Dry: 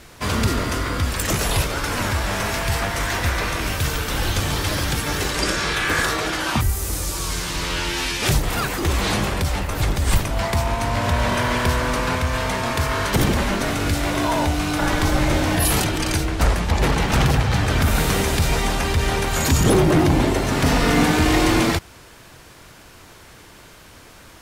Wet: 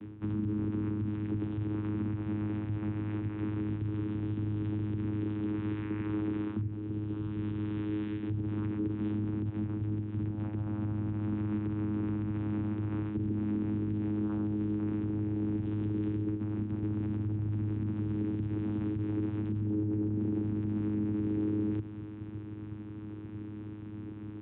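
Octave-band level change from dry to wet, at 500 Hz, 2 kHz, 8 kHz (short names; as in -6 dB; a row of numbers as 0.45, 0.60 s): -16.5 dB, -30.0 dB, under -40 dB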